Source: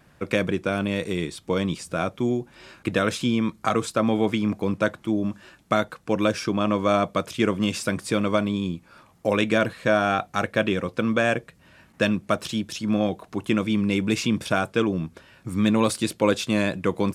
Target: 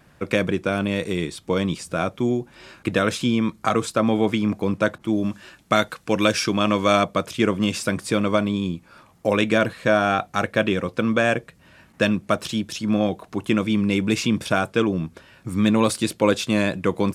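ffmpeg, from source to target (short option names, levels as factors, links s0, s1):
-filter_complex "[0:a]asettb=1/sr,asplit=3[s0][s1][s2];[s0]atrim=end=4.984[s3];[s1]atrim=start=4.98:end=7.04,asetpts=PTS-STARTPTS,afade=t=in:d=0.004:c=qsin,afade=t=out:st=2.056:d=0.004:c=qsin,adynamicequalizer=threshold=0.0141:dfrequency=1600:dqfactor=0.7:tfrequency=1600:tqfactor=0.7:attack=5:release=100:ratio=0.375:range=3.5:mode=boostabove:tftype=highshelf[s4];[s2]atrim=start=7.036[s5];[s3][s4]acrossfade=d=0.004:c1=hsin:c2=qsin[s6];[s6][s5]acrossfade=d=0.004:c1=qsin:c2=hsin,volume=1.26"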